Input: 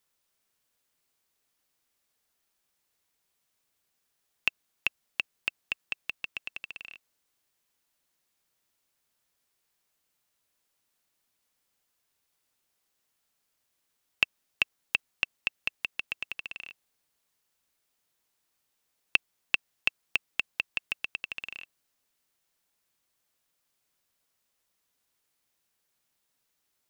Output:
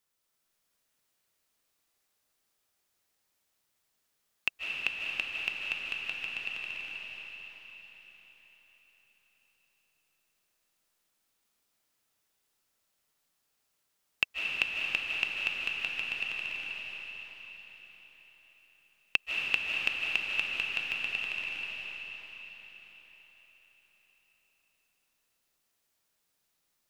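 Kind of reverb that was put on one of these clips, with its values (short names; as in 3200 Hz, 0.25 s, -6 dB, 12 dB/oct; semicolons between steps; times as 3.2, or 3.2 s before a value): digital reverb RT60 4.9 s, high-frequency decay 0.95×, pre-delay 0.115 s, DRR -2.5 dB; gain -3.5 dB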